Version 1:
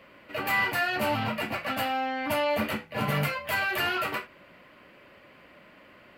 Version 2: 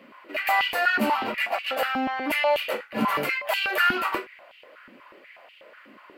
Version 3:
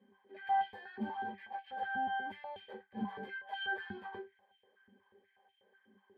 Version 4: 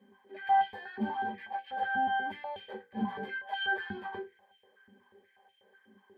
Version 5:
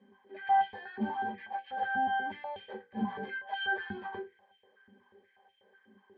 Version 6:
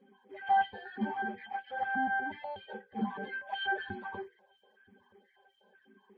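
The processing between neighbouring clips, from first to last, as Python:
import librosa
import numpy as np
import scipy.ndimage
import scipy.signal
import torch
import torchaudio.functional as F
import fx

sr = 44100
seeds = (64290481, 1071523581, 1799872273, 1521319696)

y1 = fx.filter_held_highpass(x, sr, hz=8.2, low_hz=240.0, high_hz=2900.0)
y2 = fx.octave_resonator(y1, sr, note='G', decay_s=0.13)
y2 = y2 * 10.0 ** (-4.0 / 20.0)
y3 = fx.hum_notches(y2, sr, base_hz=60, count=9)
y3 = y3 * 10.0 ** (6.0 / 20.0)
y4 = fx.air_absorb(y3, sr, metres=110.0)
y5 = fx.spec_quant(y4, sr, step_db=30)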